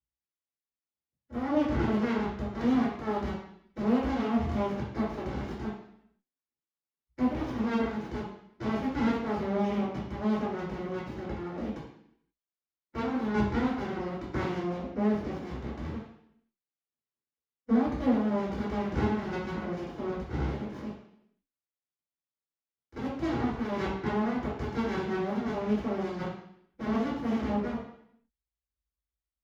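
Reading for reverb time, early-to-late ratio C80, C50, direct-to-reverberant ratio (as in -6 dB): 0.70 s, 6.0 dB, 2.0 dB, -11.0 dB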